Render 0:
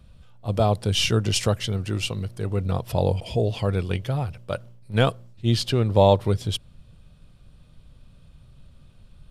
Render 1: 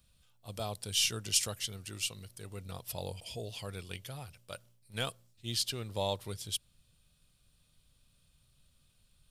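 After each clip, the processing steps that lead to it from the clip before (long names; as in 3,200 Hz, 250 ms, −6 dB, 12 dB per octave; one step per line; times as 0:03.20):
first-order pre-emphasis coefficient 0.9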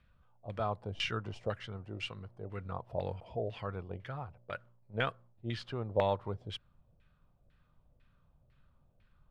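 auto-filter low-pass saw down 2 Hz 570–2,000 Hz
level +2 dB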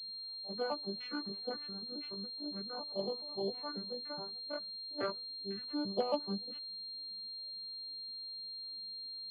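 vocoder with an arpeggio as carrier major triad, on G3, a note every 139 ms
multi-voice chorus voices 6, 0.29 Hz, delay 16 ms, depth 2.5 ms
switching amplifier with a slow clock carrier 4,200 Hz
level +2 dB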